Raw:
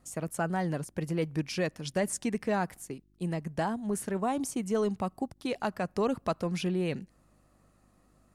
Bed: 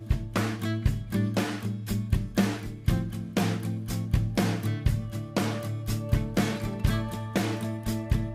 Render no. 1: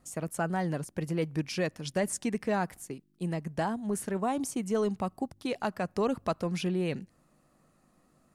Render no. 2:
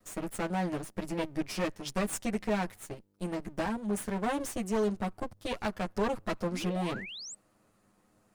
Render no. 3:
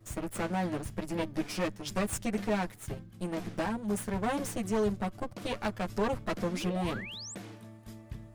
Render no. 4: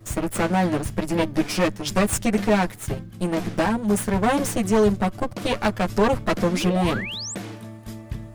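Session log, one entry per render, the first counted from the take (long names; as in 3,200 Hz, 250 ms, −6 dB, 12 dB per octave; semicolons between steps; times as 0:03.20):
hum removal 50 Hz, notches 2
lower of the sound and its delayed copy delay 9.5 ms; 0:06.52–0:07.35: sound drawn into the spectrogram rise 210–8,400 Hz −43 dBFS
mix in bed −17.5 dB
level +11 dB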